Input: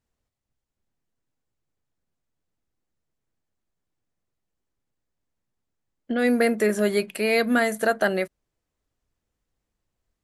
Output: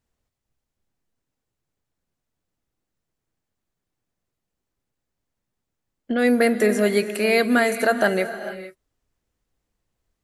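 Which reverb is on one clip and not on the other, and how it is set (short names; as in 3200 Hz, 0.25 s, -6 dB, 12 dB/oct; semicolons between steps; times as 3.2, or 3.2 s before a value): non-linear reverb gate 0.49 s rising, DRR 11 dB; gain +2.5 dB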